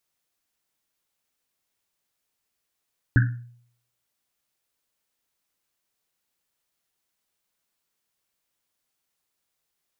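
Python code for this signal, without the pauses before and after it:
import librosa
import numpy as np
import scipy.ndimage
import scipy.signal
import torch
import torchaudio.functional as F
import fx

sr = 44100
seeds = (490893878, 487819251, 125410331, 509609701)

y = fx.risset_drum(sr, seeds[0], length_s=1.1, hz=120.0, decay_s=0.62, noise_hz=1600.0, noise_width_hz=310.0, noise_pct=20)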